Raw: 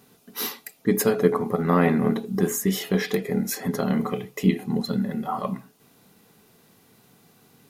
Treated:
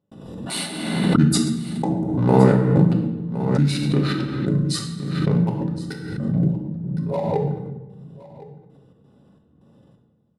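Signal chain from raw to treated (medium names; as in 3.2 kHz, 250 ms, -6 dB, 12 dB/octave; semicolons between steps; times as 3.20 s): local Wiener filter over 15 samples; peaking EQ 5.3 kHz +9.5 dB 0.82 oct; band-stop 4.3 kHz, Q 12; de-hum 62.26 Hz, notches 7; small resonant body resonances 290/600/2700 Hz, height 11 dB, ringing for 30 ms; trance gate ".xx.xxx..xxx..." 177 bpm -60 dB; delay 788 ms -19 dB; simulated room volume 310 m³, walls mixed, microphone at 0.96 m; speed mistake 45 rpm record played at 33 rpm; swell ahead of each attack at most 39 dB/s; trim -2 dB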